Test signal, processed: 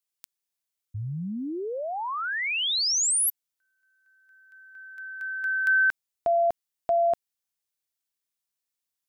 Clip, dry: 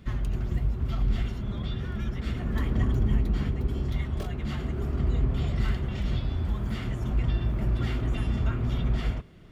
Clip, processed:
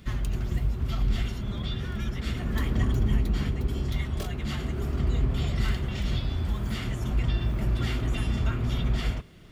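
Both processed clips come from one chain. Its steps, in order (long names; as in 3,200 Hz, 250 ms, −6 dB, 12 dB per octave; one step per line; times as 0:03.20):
high-shelf EQ 2,700 Hz +9 dB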